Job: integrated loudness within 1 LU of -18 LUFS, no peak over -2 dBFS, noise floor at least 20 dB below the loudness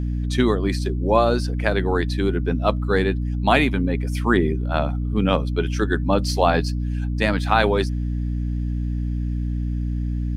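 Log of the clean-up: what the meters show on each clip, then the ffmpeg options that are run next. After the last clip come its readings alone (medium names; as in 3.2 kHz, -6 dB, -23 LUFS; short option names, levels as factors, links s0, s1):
hum 60 Hz; highest harmonic 300 Hz; hum level -21 dBFS; loudness -22.0 LUFS; peak level -2.5 dBFS; loudness target -18.0 LUFS
-> -af "bandreject=f=60:t=h:w=6,bandreject=f=120:t=h:w=6,bandreject=f=180:t=h:w=6,bandreject=f=240:t=h:w=6,bandreject=f=300:t=h:w=6"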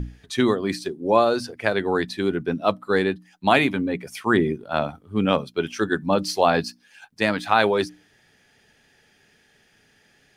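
hum not found; loudness -23.0 LUFS; peak level -3.0 dBFS; loudness target -18.0 LUFS
-> -af "volume=1.78,alimiter=limit=0.794:level=0:latency=1"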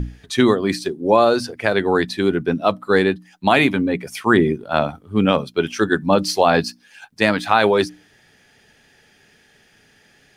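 loudness -18.5 LUFS; peak level -2.0 dBFS; noise floor -56 dBFS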